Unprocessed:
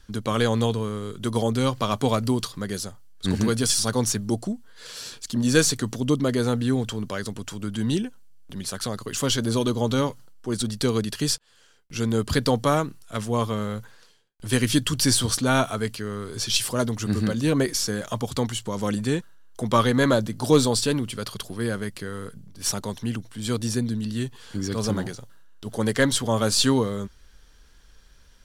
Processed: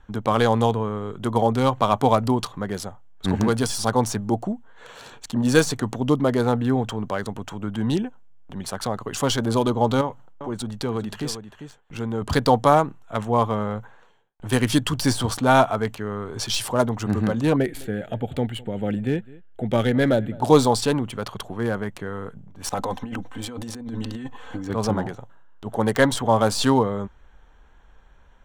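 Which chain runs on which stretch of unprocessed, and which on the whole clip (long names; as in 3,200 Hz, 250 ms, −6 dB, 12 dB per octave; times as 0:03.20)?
0:10.01–0:12.22: downward compressor 1.5 to 1, threshold −33 dBFS + single-tap delay 397 ms −10 dB
0:17.56–0:20.42: phaser with its sweep stopped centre 2,500 Hz, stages 4 + single-tap delay 207 ms −22.5 dB
0:22.69–0:24.70: notch filter 210 Hz, Q 5.2 + comb filter 3.9 ms, depth 64% + compressor whose output falls as the input rises −32 dBFS
whole clip: adaptive Wiener filter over 9 samples; de-essing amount 45%; parametric band 820 Hz +10.5 dB 0.83 octaves; level +1 dB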